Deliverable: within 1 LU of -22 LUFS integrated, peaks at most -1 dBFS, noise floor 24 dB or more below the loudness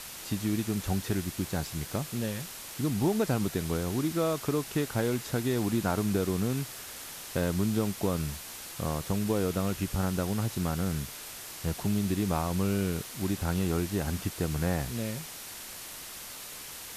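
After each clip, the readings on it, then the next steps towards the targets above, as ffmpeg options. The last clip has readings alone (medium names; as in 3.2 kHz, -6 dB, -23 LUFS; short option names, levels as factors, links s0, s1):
noise floor -43 dBFS; noise floor target -56 dBFS; loudness -31.5 LUFS; peak level -15.5 dBFS; loudness target -22.0 LUFS
-> -af "afftdn=nr=13:nf=-43"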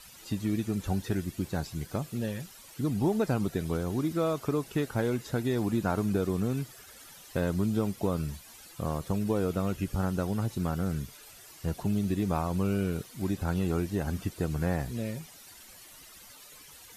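noise floor -51 dBFS; noise floor target -55 dBFS
-> -af "afftdn=nr=6:nf=-51"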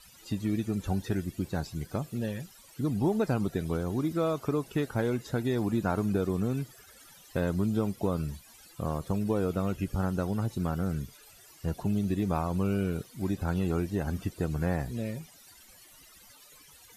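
noise floor -55 dBFS; loudness -31.0 LUFS; peak level -16.0 dBFS; loudness target -22.0 LUFS
-> -af "volume=2.82"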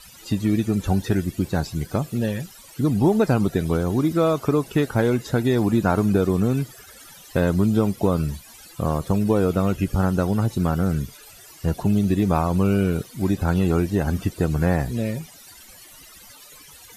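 loudness -22.0 LUFS; peak level -7.0 dBFS; noise floor -46 dBFS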